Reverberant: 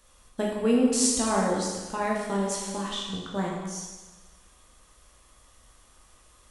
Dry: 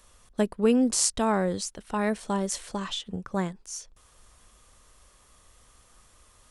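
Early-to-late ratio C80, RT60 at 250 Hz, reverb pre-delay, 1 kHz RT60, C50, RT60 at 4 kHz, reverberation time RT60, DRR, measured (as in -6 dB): 3.0 dB, 1.3 s, 7 ms, 1.2 s, 1.0 dB, 1.2 s, 1.2 s, -3.0 dB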